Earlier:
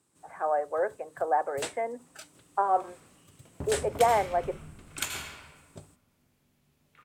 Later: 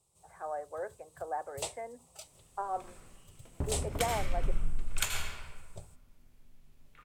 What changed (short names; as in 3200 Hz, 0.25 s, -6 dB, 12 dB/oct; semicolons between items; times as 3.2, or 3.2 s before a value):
speech -10.5 dB; first sound: add fixed phaser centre 670 Hz, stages 4; master: remove HPF 100 Hz 12 dB/oct